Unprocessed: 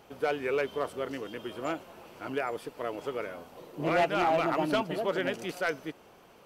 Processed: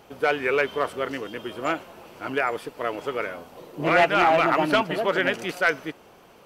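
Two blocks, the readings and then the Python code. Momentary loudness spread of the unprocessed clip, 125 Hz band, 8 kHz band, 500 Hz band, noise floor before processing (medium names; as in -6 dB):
14 LU, +4.5 dB, +5.0 dB, +6.0 dB, -56 dBFS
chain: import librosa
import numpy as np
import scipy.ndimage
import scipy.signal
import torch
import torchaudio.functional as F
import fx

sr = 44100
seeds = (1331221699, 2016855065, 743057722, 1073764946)

y = fx.dynamic_eq(x, sr, hz=1800.0, q=0.71, threshold_db=-44.0, ratio=4.0, max_db=7)
y = y * librosa.db_to_amplitude(4.5)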